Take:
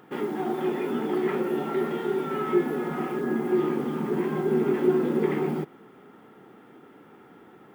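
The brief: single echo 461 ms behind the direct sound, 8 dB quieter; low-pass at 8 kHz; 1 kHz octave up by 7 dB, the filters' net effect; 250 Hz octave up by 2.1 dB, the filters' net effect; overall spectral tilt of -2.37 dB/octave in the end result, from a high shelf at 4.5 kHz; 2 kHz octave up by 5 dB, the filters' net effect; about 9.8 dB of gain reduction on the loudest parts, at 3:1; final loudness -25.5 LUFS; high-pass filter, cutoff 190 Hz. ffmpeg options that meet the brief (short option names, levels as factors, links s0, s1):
-af "highpass=190,lowpass=8000,equalizer=f=250:t=o:g=3.5,equalizer=f=1000:t=o:g=8.5,equalizer=f=2000:t=o:g=4,highshelf=f=4500:g=-5.5,acompressor=threshold=0.0398:ratio=3,aecho=1:1:461:0.398,volume=1.58"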